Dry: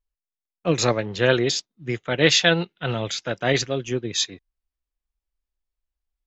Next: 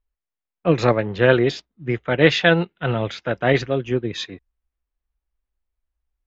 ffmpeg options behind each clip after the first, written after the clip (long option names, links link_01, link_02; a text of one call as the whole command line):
ffmpeg -i in.wav -af "lowpass=2300,equalizer=frequency=60:width=7.5:gain=9.5,volume=4dB" out.wav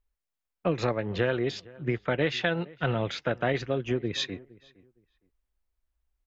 ffmpeg -i in.wav -filter_complex "[0:a]acompressor=threshold=-24dB:ratio=5,asplit=2[link_01][link_02];[link_02]adelay=463,lowpass=frequency=2000:poles=1,volume=-22dB,asplit=2[link_03][link_04];[link_04]adelay=463,lowpass=frequency=2000:poles=1,volume=0.22[link_05];[link_01][link_03][link_05]amix=inputs=3:normalize=0" out.wav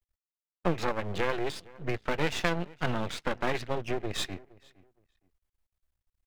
ffmpeg -i in.wav -af "aeval=exprs='max(val(0),0)':channel_layout=same,volume=2dB" out.wav